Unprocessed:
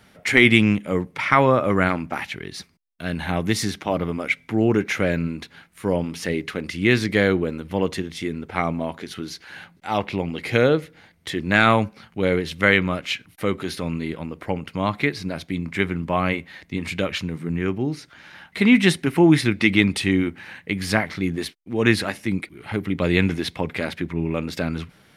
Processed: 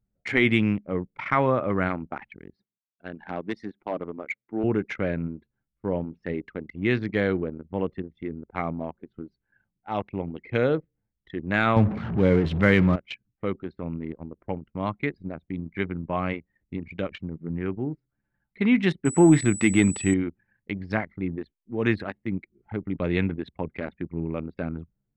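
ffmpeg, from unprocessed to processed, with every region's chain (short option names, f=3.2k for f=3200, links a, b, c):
-filter_complex "[0:a]asettb=1/sr,asplit=3[a][b][c];[a]atrim=end=2.554[d];[b]atrim=start=2.55:end=4.64,asetpts=PTS-STARTPTS,afade=t=in:d=0.004:c=qsin,afade=t=out:st=2.086:d=0.004:c=qsin,highpass=250,bandreject=f=7.4k:w=22,asoftclip=type=hard:threshold=-15.5dB[e];[c]atrim=start=4.636[f];[d][e]acrossfade=d=0.004:c1=hsin:c2=qsin[g];[g][f]acrossfade=d=0.004:c1=qsin:c2=hsin,asettb=1/sr,asplit=3[h][i][j];[h]atrim=end=11.764[k];[i]atrim=start=11.76:end=12.96,asetpts=PTS-STARTPTS,afade=t=in:d=0.004:c=qsin,afade=t=out:st=1.196:d=0.004:c=qsin,aeval=exprs='val(0)+0.5*0.0668*sgn(val(0))':c=same,highpass=56,lowshelf=f=270:g=10.5[l];[j]atrim=start=12.956[m];[k][l]acrossfade=d=0.004:c1=hsin:c2=qsin[n];[n][m]acrossfade=d=0.004:c1=qsin:c2=hsin,asettb=1/sr,asplit=3[o][p][q];[o]atrim=end=19.054[r];[p]atrim=start=19.05:end=20.14,asetpts=PTS-STARTPTS,afade=t=in:d=0.004:c=qsin,afade=t=out:st=1.086:d=0.004:c=qsin,highshelf=f=2.5k:g=-7,acontrast=23,aeval=exprs='val(0)+0.158*sin(2*PI*7900*n/s)':c=same[s];[q]atrim=start=20.136[t];[r][s]acrossfade=d=0.004:c1=hsin:c2=qsin[u];[u][t]acrossfade=d=0.004:c1=qsin:c2=hsin,aemphasis=mode=reproduction:type=75kf,anlmdn=158,volume=-5dB"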